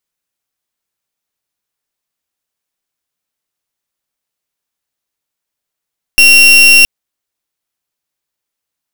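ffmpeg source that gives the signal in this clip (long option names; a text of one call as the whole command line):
ffmpeg -f lavfi -i "aevalsrc='0.596*(2*lt(mod(2740*t,1),0.36)-1)':duration=0.67:sample_rate=44100" out.wav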